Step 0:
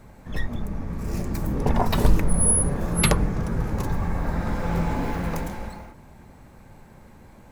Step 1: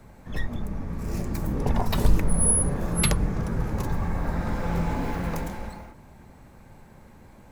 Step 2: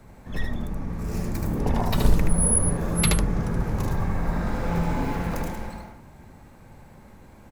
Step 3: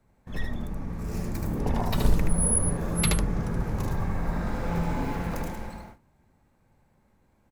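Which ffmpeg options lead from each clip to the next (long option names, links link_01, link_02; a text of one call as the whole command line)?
ffmpeg -i in.wav -filter_complex "[0:a]acrossover=split=170|3000[link_01][link_02][link_03];[link_02]acompressor=threshold=-24dB:ratio=6[link_04];[link_01][link_04][link_03]amix=inputs=3:normalize=0,volume=-1.5dB" out.wav
ffmpeg -i in.wav -af "aecho=1:1:76:0.631" out.wav
ffmpeg -i in.wav -af "agate=range=-14dB:threshold=-42dB:ratio=16:detection=peak,volume=-3dB" out.wav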